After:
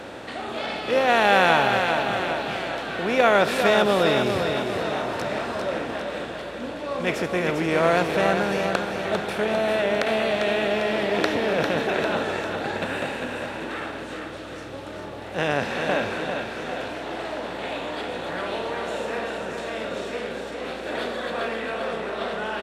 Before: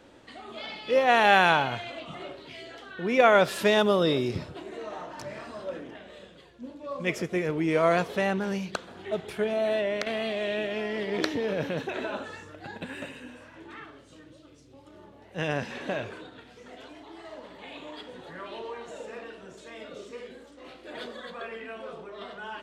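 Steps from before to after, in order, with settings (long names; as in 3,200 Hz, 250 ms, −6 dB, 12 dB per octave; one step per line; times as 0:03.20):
compressor on every frequency bin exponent 0.6
0:18.38–0:19.37: high-shelf EQ 11,000 Hz +5 dB
repeating echo 399 ms, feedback 56%, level −6 dB
level −1 dB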